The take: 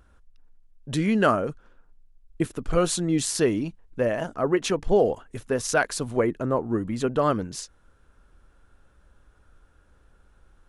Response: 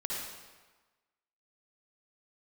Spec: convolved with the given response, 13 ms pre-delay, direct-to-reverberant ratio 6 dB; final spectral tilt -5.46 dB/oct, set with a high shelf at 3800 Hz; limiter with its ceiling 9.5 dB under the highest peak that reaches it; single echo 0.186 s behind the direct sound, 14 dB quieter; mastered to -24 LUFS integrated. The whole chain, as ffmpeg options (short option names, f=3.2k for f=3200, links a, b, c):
-filter_complex "[0:a]highshelf=f=3.8k:g=-6,alimiter=limit=-17dB:level=0:latency=1,aecho=1:1:186:0.2,asplit=2[a][b];[1:a]atrim=start_sample=2205,adelay=13[c];[b][c]afir=irnorm=-1:irlink=0,volume=-9.5dB[d];[a][d]amix=inputs=2:normalize=0,volume=3.5dB"